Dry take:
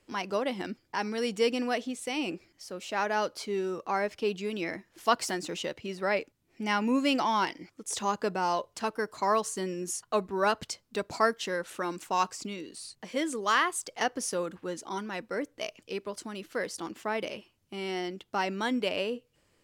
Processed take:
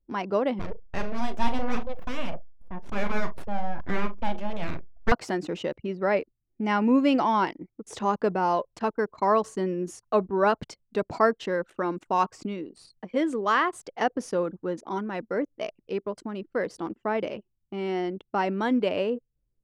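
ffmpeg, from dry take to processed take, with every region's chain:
-filter_complex "[0:a]asettb=1/sr,asplit=3[a][b][c];[a]atrim=end=0.594[d];[b]atrim=start=0.59:end=5.12,asetpts=PTS-STARTPTS,afade=t=in:d=0.004:c=qsin,afade=t=out:st=4.526:d=0.004:c=qsin,aeval=exprs='abs(val(0))':c=same,asplit=2[e][f];[f]adelay=39,volume=-9.5dB[g];[e][g]amix=inputs=2:normalize=0,atrim=end_sample=199773,asplit=2[h][i];[i]adelay=69,lowpass=f=1k:p=1,volume=-12.5dB,asplit=2[j][k];[k]adelay=69,lowpass=f=1k:p=1,volume=0.43,asplit=2[l][m];[m]adelay=69,lowpass=f=1k:p=1,volume=0.43,asplit=2[n][o];[o]adelay=69,lowpass=f=1k:p=1,volume=0.43[p];[h][j][l][n][p]amix=inputs=5:normalize=0,atrim=end_sample=199773[q];[c]atrim=start=5.116[r];[d][q]acrossfade=d=0.004:c1=hsin:c2=qsin[s];[s][r]acrossfade=d=0.004:c1=qsin:c2=hsin,anlmdn=0.1,lowpass=f=1k:p=1,volume=6.5dB"

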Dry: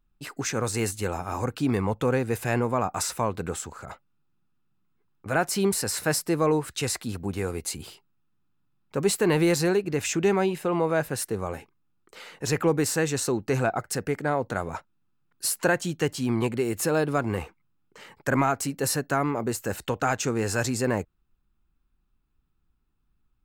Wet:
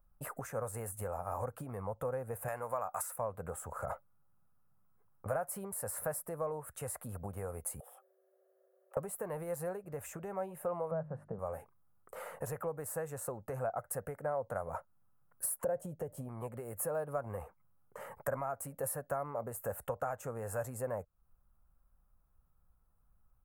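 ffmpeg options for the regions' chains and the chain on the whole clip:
-filter_complex "[0:a]asettb=1/sr,asplit=3[a][b][c];[a]atrim=end=2.484[d];[b]atrim=start=2.48:end=3.16,asetpts=PTS-STARTPTS,afade=t=in:d=0.004:c=qsin,afade=t=out:st=0.676:d=0.004:c=qsin,tiltshelf=f=780:g=-8.5,acompressor=mode=upward:threshold=-28dB:ratio=2.5:attack=3.2:release=140:knee=2.83:detection=peak[e];[c]atrim=start=3.156[f];[d][e]acrossfade=d=0.004:c1=hsin:c2=qsin[g];[g][f]acrossfade=d=0.004:c1=qsin:c2=hsin,asettb=1/sr,asplit=3[h][i][j];[h]atrim=end=7.804[k];[i]atrim=start=7.8:end=8.97,asetpts=PTS-STARTPTS,afade=t=in:d=0.004:c=qsin,afade=t=out:st=1.166:d=0.004:c=qsin,equalizer=f=4.2k:t=o:w=0.46:g=-13.5,acompressor=threshold=-52dB:ratio=16:attack=3.2:release=140:knee=1:detection=peak,afreqshift=380[l];[j]atrim=start=8.966[m];[k][l]acrossfade=d=0.004:c1=hsin:c2=qsin[n];[n][m]acrossfade=d=0.004:c1=qsin:c2=hsin,asettb=1/sr,asplit=3[o][p][q];[o]atrim=end=10.914[r];[p]atrim=start=10.91:end=11.39,asetpts=PTS-STARTPTS,afade=t=in:d=0.004:c=qsin,afade=t=out:st=0.476:d=0.004:c=qsin,lowpass=1.3k,equalizer=f=170:t=o:w=0.64:g=15,bandreject=f=50:t=h:w=6,bandreject=f=100:t=h:w=6,bandreject=f=150:t=h:w=6,bandreject=f=200:t=h:w=6,bandreject=f=250:t=h:w=6,bandreject=f=300:t=h:w=6,bandreject=f=350:t=h:w=6[s];[q]atrim=start=11.386[t];[r][s]acrossfade=d=0.004:c1=hsin:c2=qsin[u];[u][t]acrossfade=d=0.004:c1=qsin:c2=hsin,asettb=1/sr,asplit=3[v][w][x];[v]atrim=end=15.644[y];[w]atrim=start=15.64:end=16.29,asetpts=PTS-STARTPTS,afade=t=in:d=0.004:c=qsin,afade=t=out:st=0.646:d=0.004:c=qsin,lowshelf=f=780:t=q:w=1.5:g=8.5,acompressor=threshold=-17dB:ratio=3:attack=3.2:release=140:knee=1:detection=peak[z];[x]atrim=start=16.286[aa];[y][z]acrossfade=d=0.004:c1=hsin:c2=qsin[ab];[ab][aa]acrossfade=d=0.004:c1=qsin:c2=hsin,bandreject=f=1.5k:w=28,acompressor=threshold=-37dB:ratio=10,firequalizer=gain_entry='entry(100,0);entry(330,-13);entry(550,9);entry(820,2);entry(1300,1);entry(2300,-13);entry(4000,-23);entry(5700,-17);entry(10000,5)':delay=0.05:min_phase=1,volume=1.5dB"

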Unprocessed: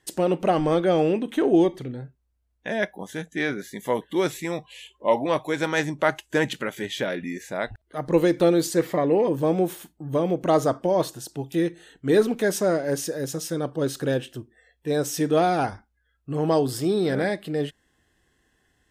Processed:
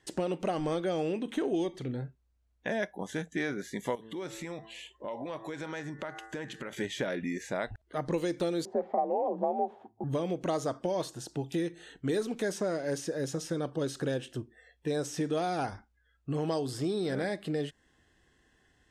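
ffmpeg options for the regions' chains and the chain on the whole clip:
-filter_complex "[0:a]asettb=1/sr,asplit=3[a][b][c];[a]atrim=end=3.954[d];[b]atrim=start=3.95:end=6.73,asetpts=PTS-STARTPTS,afade=t=in:d=0.004:c=qsin,afade=t=out:st=2.776:d=0.004:c=qsin,bandreject=f=111.3:t=h:w=4,bandreject=f=222.6:t=h:w=4,bandreject=f=333.9:t=h:w=4,bandreject=f=445.2:t=h:w=4,bandreject=f=556.5:t=h:w=4,bandreject=f=667.8:t=h:w=4,bandreject=f=779.1:t=h:w=4,bandreject=f=890.4:t=h:w=4,bandreject=f=1.0017k:t=h:w=4,bandreject=f=1.113k:t=h:w=4,bandreject=f=1.2243k:t=h:w=4,bandreject=f=1.3356k:t=h:w=4,bandreject=f=1.4469k:t=h:w=4,bandreject=f=1.5582k:t=h:w=4,bandreject=f=1.6695k:t=h:w=4,bandreject=f=1.7808k:t=h:w=4,bandreject=f=1.8921k:t=h:w=4,bandreject=f=2.0034k:t=h:w=4,acompressor=threshold=-36dB:ratio=5:attack=3.2:release=140:knee=1:detection=peak[e];[c]atrim=start=6.726[f];[d][e]acrossfade=d=0.004:c1=hsin:c2=qsin[g];[g][f]acrossfade=d=0.004:c1=qsin:c2=hsin,asettb=1/sr,asplit=3[h][i][j];[h]atrim=end=8.654[k];[i]atrim=start=8.65:end=10.04,asetpts=PTS-STARTPTS,afade=t=in:d=0.004:c=qsin,afade=t=out:st=1.386:d=0.004:c=qsin,lowpass=f=730:t=q:w=7.2,afreqshift=48[l];[j]atrim=start=10.036[m];[k][l]acrossfade=d=0.004:c1=hsin:c2=qsin[n];[n][m]acrossfade=d=0.004:c1=qsin:c2=hsin,acrossover=split=2300|5200[o][p][q];[o]acompressor=threshold=-30dB:ratio=4[r];[p]acompressor=threshold=-51dB:ratio=4[s];[q]acompressor=threshold=-41dB:ratio=4[t];[r][s][t]amix=inputs=3:normalize=0,lowpass=7.9k"

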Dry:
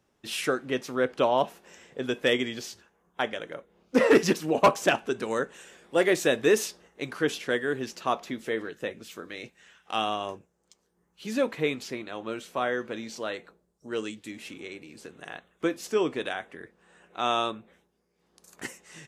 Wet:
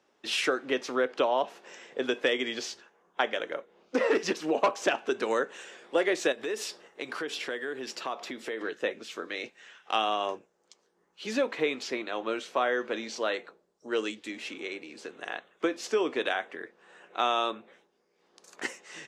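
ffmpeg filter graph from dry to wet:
-filter_complex "[0:a]asettb=1/sr,asplit=3[a][b][c];[a]atrim=end=6.324[d];[b]atrim=start=6.32:end=8.61,asetpts=PTS-STARTPTS,afade=t=in:d=0.004:c=qsin,afade=t=out:st=2.286:d=0.004:c=qsin,bandreject=f=6.3k:w=11,acompressor=threshold=-35dB:ratio=4:attack=3.2:release=140:knee=1:detection=peak,highshelf=f=9.7k:g=9[e];[c]atrim=start=8.606[f];[d][e]acrossfade=d=0.004:c1=hsin:c2=qsin[g];[g][f]acrossfade=d=0.004:c1=qsin:c2=hsin,acompressor=threshold=-26dB:ratio=6,acrossover=split=260 7200:gain=0.0794 1 0.126[h][i][j];[h][i][j]amix=inputs=3:normalize=0,volume=4.5dB"

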